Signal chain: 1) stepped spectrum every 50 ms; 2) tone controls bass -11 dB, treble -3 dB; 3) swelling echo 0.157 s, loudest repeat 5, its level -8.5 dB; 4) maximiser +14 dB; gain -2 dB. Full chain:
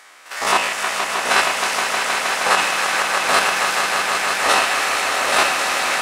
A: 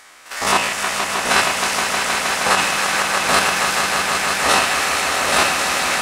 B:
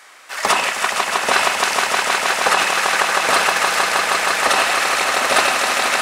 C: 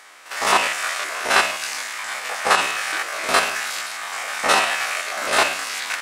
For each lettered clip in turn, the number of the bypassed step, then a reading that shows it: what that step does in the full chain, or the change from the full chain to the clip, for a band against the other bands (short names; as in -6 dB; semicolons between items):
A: 2, 125 Hz band +8.0 dB; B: 1, loudness change +1.5 LU; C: 3, crest factor change +3.5 dB